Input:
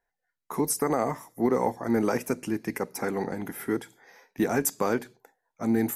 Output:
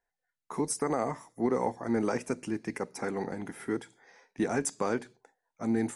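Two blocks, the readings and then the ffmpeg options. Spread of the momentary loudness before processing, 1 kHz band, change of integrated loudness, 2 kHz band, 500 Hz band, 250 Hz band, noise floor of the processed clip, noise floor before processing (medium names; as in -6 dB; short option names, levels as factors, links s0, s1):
8 LU, -4.0 dB, -4.0 dB, -4.0 dB, -4.0 dB, -4.0 dB, under -85 dBFS, -85 dBFS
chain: -af "aresample=22050,aresample=44100,volume=0.631"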